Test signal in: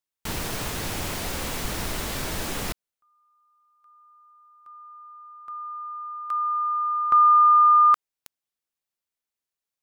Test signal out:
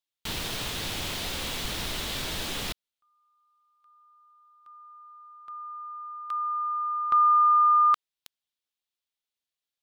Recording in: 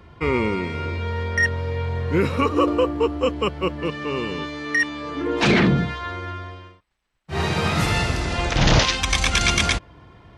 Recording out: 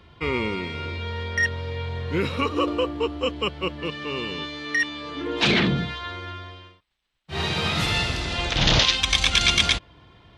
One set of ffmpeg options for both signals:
-af "equalizer=f=3500:t=o:w=1:g=10,volume=0.562"

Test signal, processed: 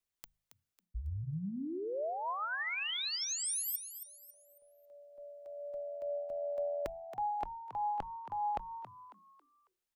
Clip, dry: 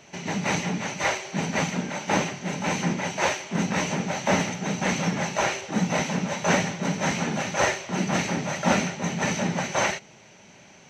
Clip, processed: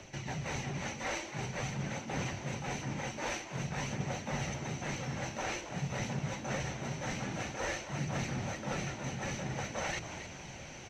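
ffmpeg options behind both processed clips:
-filter_complex "[0:a]lowshelf=f=96:g=10.5,bandreject=f=52.03:t=h:w=4,bandreject=f=104.06:t=h:w=4,bandreject=f=156.09:t=h:w=4,bandreject=f=208.12:t=h:w=4,areverse,acompressor=threshold=0.01:ratio=4,areverse,afreqshift=-40,aphaser=in_gain=1:out_gain=1:delay=4:decay=0.23:speed=0.49:type=triangular,asplit=5[s0][s1][s2][s3][s4];[s1]adelay=274,afreqshift=86,volume=0.299[s5];[s2]adelay=548,afreqshift=172,volume=0.105[s6];[s3]adelay=822,afreqshift=258,volume=0.0367[s7];[s4]adelay=1096,afreqshift=344,volume=0.0127[s8];[s0][s5][s6][s7][s8]amix=inputs=5:normalize=0,volume=1.26"

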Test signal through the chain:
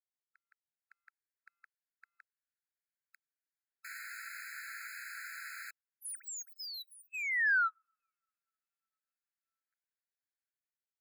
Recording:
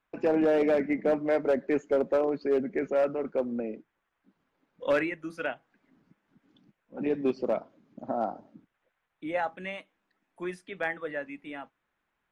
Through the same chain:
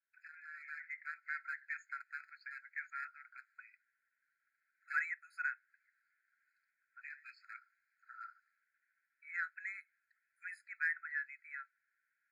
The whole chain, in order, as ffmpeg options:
-filter_complex "[0:a]acrossover=split=1400[s0][s1];[s1]asoftclip=type=tanh:threshold=0.0251[s2];[s0][s2]amix=inputs=2:normalize=0,highshelf=f=2100:t=q:w=1.5:g=-12.5,dynaudnorm=f=560:g=3:m=3.98,equalizer=f=1300:w=3.1:g=-9.5,afftfilt=real='re*eq(mod(floor(b*sr/1024/1300),2),1)':imag='im*eq(mod(floor(b*sr/1024/1300),2),1)':win_size=1024:overlap=0.75,volume=0.447"

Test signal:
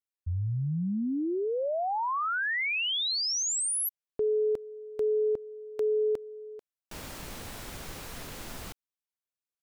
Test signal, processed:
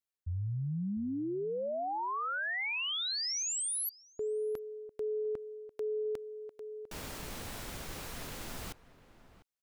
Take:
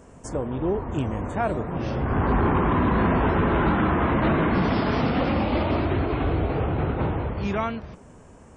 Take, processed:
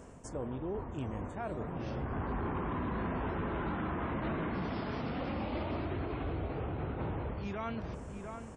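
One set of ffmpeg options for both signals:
-filter_complex "[0:a]asplit=2[s0][s1];[s1]adelay=699.7,volume=0.141,highshelf=f=4000:g=-15.7[s2];[s0][s2]amix=inputs=2:normalize=0,areverse,acompressor=threshold=0.0251:ratio=8:attack=1.8:release=428:knee=6:detection=rms,areverse"

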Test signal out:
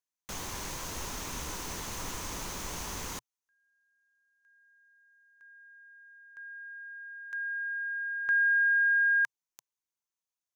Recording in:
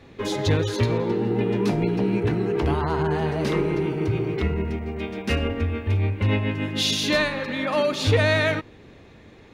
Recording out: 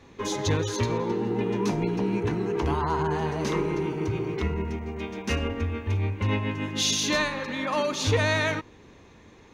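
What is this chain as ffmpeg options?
-af "equalizer=f=125:t=o:w=0.33:g=-4,equalizer=f=630:t=o:w=0.33:g=-3,equalizer=f=1000:t=o:w=0.33:g=7,equalizer=f=6300:t=o:w=0.33:g=10,volume=0.668"

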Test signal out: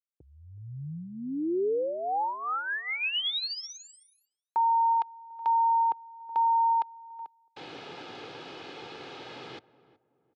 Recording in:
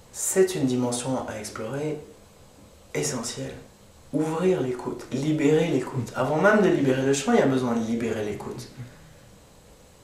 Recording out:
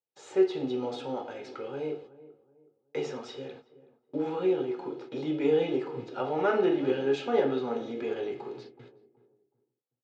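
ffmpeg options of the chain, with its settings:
-filter_complex "[0:a]agate=range=0.00891:threshold=0.01:ratio=16:detection=peak,highpass=f=160:w=0.5412,highpass=f=160:w=1.3066,equalizer=f=200:t=q:w=4:g=-7,equalizer=f=1100:t=q:w=4:g=-5,equalizer=f=1900:t=q:w=4:g=-7,lowpass=f=4000:w=0.5412,lowpass=f=4000:w=1.3066,aecho=1:1:2.4:0.45,asplit=2[s0][s1];[s1]adelay=373,lowpass=f=990:p=1,volume=0.141,asplit=2[s2][s3];[s3]adelay=373,lowpass=f=990:p=1,volume=0.35,asplit=2[s4][s5];[s5]adelay=373,lowpass=f=990:p=1,volume=0.35[s6];[s2][s4][s6]amix=inputs=3:normalize=0[s7];[s0][s7]amix=inputs=2:normalize=0,volume=0.531"

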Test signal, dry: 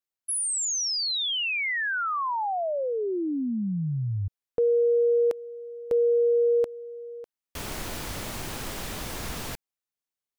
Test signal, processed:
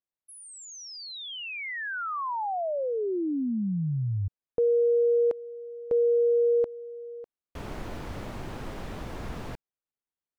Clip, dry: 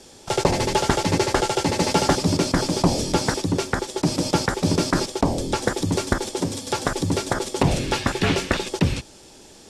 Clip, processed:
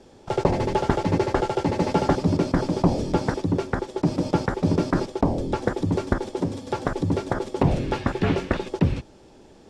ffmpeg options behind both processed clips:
-af "lowpass=f=1000:p=1"

